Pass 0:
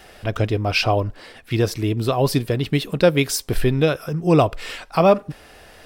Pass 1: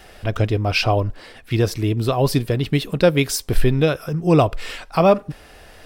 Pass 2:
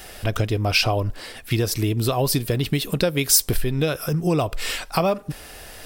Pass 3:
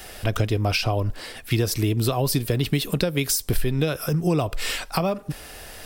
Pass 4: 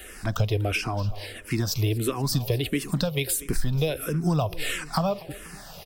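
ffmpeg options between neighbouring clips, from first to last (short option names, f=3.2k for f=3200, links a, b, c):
-af "lowshelf=f=78:g=6.5"
-af "acompressor=threshold=-20dB:ratio=6,crystalizer=i=2:c=0,volume=2dB"
-filter_complex "[0:a]acrossover=split=270[a][b];[b]acompressor=threshold=-21dB:ratio=6[c];[a][c]amix=inputs=2:normalize=0"
-filter_complex "[0:a]aecho=1:1:242|484|726|968|1210:0.119|0.0689|0.04|0.0232|0.0134,asplit=2[a][b];[b]afreqshift=-1.5[c];[a][c]amix=inputs=2:normalize=1"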